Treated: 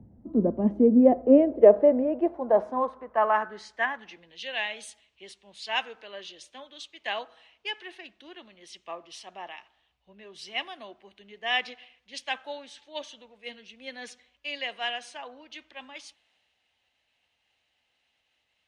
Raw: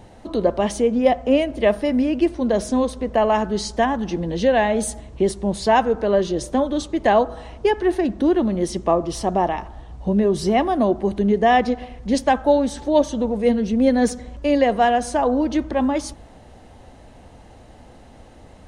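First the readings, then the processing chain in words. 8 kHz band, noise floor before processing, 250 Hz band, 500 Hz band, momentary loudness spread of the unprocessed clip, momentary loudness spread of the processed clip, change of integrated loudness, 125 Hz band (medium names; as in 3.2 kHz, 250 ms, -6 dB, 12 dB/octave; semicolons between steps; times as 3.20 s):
-16.5 dB, -46 dBFS, -8.5 dB, -7.0 dB, 6 LU, 24 LU, -5.0 dB, under -10 dB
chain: upward compressor, threshold -32 dBFS; band-pass sweep 230 Hz -> 2.7 kHz, 0.55–4.40 s; three bands expanded up and down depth 70%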